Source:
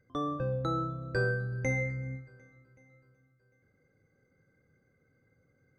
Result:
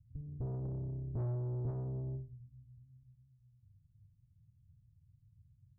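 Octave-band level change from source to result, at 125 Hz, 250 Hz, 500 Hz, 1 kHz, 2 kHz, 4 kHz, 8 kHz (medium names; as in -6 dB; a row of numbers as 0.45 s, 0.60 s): -2.5 dB, -8.5 dB, -13.0 dB, -20.5 dB, under -40 dB, under -30 dB, no reading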